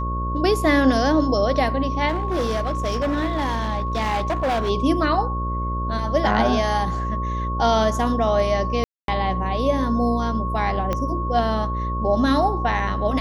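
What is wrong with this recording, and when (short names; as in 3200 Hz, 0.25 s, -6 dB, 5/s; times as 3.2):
buzz 60 Hz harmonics 10 -26 dBFS
tone 1100 Hz -27 dBFS
2.08–4.7 clipped -18.5 dBFS
8.84–9.08 gap 0.242 s
10.93 pop -11 dBFS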